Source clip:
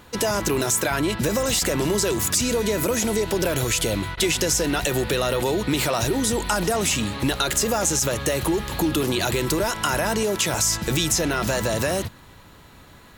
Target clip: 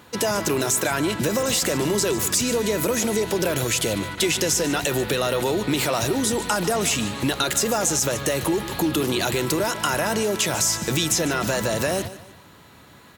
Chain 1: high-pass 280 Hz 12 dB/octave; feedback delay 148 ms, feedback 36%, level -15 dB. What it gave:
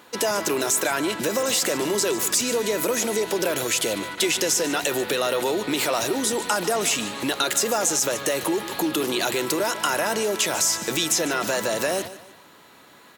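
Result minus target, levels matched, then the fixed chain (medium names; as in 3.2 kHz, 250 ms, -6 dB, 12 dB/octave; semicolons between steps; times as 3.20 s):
125 Hz band -10.5 dB
high-pass 100 Hz 12 dB/octave; feedback delay 148 ms, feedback 36%, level -15 dB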